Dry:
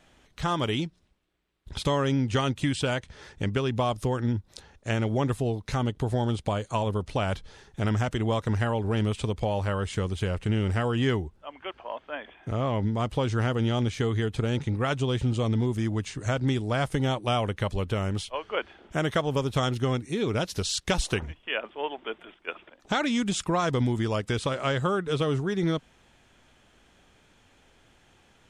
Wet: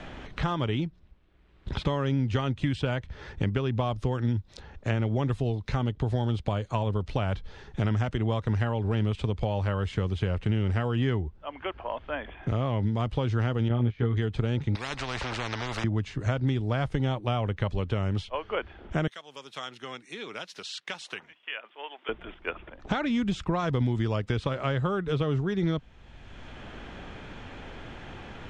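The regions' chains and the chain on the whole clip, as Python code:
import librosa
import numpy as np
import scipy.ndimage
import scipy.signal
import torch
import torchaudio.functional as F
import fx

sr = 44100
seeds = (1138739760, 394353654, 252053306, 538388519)

y = fx.chain(x, sr, fx.lowpass(hz=1800.0, slope=12),
    fx.doubler(ms=17.0, db=-3.5),
    fx.upward_expand(threshold_db=-41.0, expansion=1.5), at=(13.68, 14.17))
y = fx.chain(y, sr, fx.band_shelf(hz=4600.0, db=10.5, octaves=1.0),
    fx.spectral_comp(ratio=10.0), at=(14.75, 15.84))
y = fx.chain(y, sr, fx.highpass(hz=160.0, slope=24),
    fx.differentiator(), at=(19.07, 22.09))
y = scipy.signal.sosfilt(scipy.signal.butter(2, 4100.0, 'lowpass', fs=sr, output='sos'), y)
y = fx.low_shelf(y, sr, hz=120.0, db=8.5)
y = fx.band_squash(y, sr, depth_pct=70)
y = F.gain(torch.from_numpy(y), -3.5).numpy()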